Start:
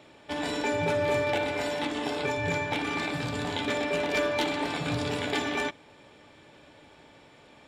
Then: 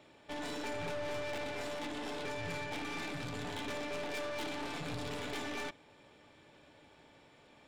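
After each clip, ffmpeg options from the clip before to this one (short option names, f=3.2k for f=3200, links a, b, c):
-af "aeval=exprs='(tanh(44.7*val(0)+0.6)-tanh(0.6))/44.7':c=same,volume=-4dB"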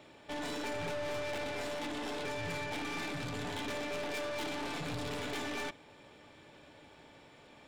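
-af "asoftclip=type=tanh:threshold=-36dB,volume=4dB"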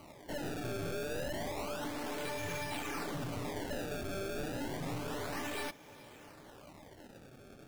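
-filter_complex "[0:a]asplit=2[a][b];[b]acompressor=threshold=-46dB:ratio=6,volume=0dB[c];[a][c]amix=inputs=2:normalize=0,acrusher=samples=25:mix=1:aa=0.000001:lfo=1:lforange=40:lforate=0.3,flanger=delay=1:depth=7.2:regen=-52:speed=0.74:shape=sinusoidal,volume=1dB"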